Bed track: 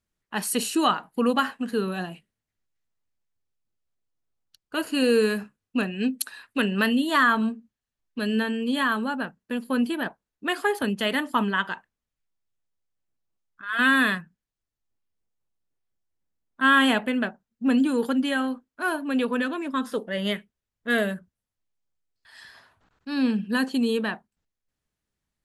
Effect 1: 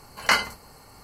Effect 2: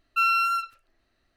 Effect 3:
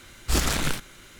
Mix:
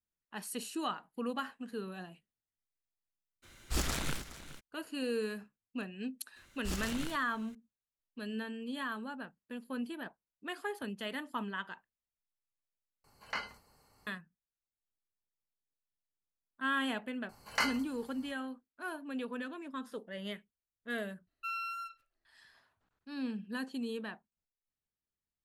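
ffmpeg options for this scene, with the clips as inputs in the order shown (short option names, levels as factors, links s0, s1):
-filter_complex "[3:a]asplit=2[s0][s1];[1:a]asplit=2[s2][s3];[0:a]volume=0.188[s4];[s0]aecho=1:1:417:0.168[s5];[s2]acrossover=split=5000[s6][s7];[s7]acompressor=threshold=0.00447:ratio=4:attack=1:release=60[s8];[s6][s8]amix=inputs=2:normalize=0[s9];[s3]asplit=2[s10][s11];[s11]adelay=19,volume=0.251[s12];[s10][s12]amix=inputs=2:normalize=0[s13];[s4]asplit=2[s14][s15];[s14]atrim=end=13.044[s16];[s9]atrim=end=1.03,asetpts=PTS-STARTPTS,volume=0.133[s17];[s15]atrim=start=14.066[s18];[s5]atrim=end=1.19,asetpts=PTS-STARTPTS,volume=0.316,afade=t=in:d=0.02,afade=t=out:st=1.17:d=0.02,adelay=3420[s19];[s1]atrim=end=1.19,asetpts=PTS-STARTPTS,volume=0.168,afade=t=in:d=0.004:c=hsin,afade=t=out:st=1.186:d=0.004:c=hsin,adelay=6360[s20];[s13]atrim=end=1.03,asetpts=PTS-STARTPTS,volume=0.266,afade=t=in:d=0.004:c=hsin,afade=t=out:st=1.026:d=0.004:c=hsin,adelay=17290[s21];[2:a]atrim=end=1.36,asetpts=PTS-STARTPTS,volume=0.15,afade=t=in:d=0.004:c=hsin,afade=t=out:st=1.356:d=0.004:c=hsin,adelay=21270[s22];[s16][s17]acrossfade=d=0.004:c1=hsin:c2=hsin[s23];[s23][s18]acrossfade=d=0.004:c1=hsin:c2=hsin[s24];[s24][s19][s20][s21][s22]amix=inputs=5:normalize=0"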